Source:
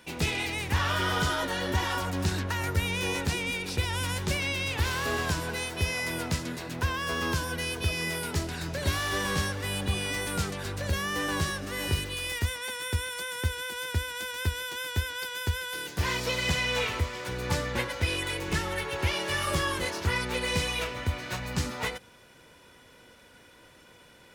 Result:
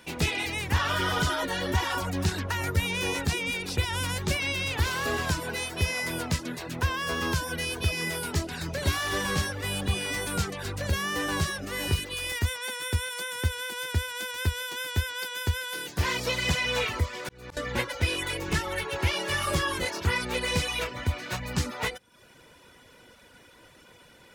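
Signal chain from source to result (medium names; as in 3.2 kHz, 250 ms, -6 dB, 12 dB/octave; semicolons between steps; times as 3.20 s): reverb removal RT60 0.53 s; 17.09–17.57 s: slow attack 515 ms; trim +2 dB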